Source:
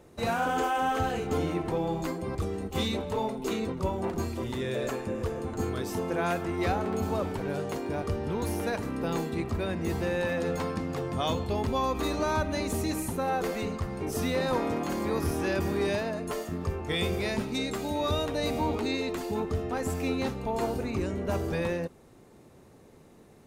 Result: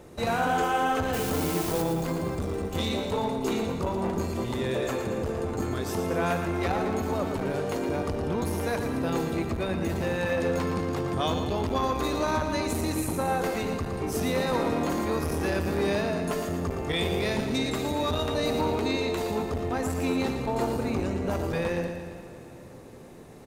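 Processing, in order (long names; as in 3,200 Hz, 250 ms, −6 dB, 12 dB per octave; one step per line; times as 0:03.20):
in parallel at +0.5 dB: downward compressor, threshold −38 dBFS, peak gain reduction 14 dB
0:01.13–0:01.82: on the sum: bit-depth reduction 6 bits, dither triangular
repeating echo 115 ms, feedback 59%, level −8 dB
convolution reverb RT60 5.4 s, pre-delay 3 ms, DRR 15 dB
saturating transformer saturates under 410 Hz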